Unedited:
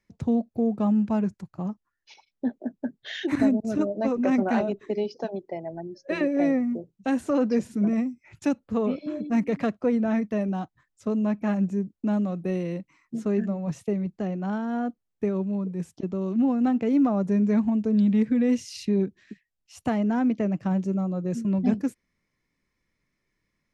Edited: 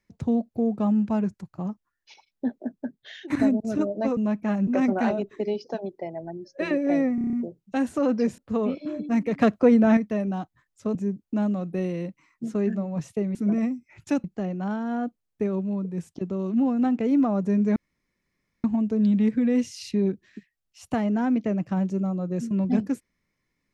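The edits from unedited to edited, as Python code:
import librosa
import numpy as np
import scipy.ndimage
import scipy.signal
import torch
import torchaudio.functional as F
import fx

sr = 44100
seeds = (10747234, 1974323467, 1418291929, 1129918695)

y = fx.edit(x, sr, fx.fade_out_to(start_s=2.71, length_s=0.59, floor_db=-14.0),
    fx.stutter(start_s=6.65, slice_s=0.03, count=7),
    fx.move(start_s=7.7, length_s=0.89, to_s=14.06),
    fx.clip_gain(start_s=9.62, length_s=0.56, db=6.5),
    fx.move(start_s=11.16, length_s=0.5, to_s=4.17),
    fx.insert_room_tone(at_s=17.58, length_s=0.88), tone=tone)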